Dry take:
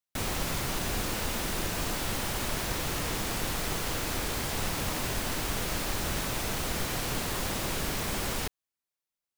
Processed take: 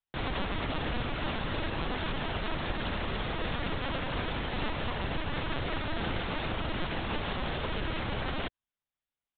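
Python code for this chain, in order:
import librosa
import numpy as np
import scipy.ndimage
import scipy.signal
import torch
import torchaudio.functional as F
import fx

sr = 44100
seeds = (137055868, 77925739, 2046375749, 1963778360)

y = fx.peak_eq(x, sr, hz=2300.0, db=-2.0, octaves=0.29)
y = fx.lpc_vocoder(y, sr, seeds[0], excitation='pitch_kept', order=10)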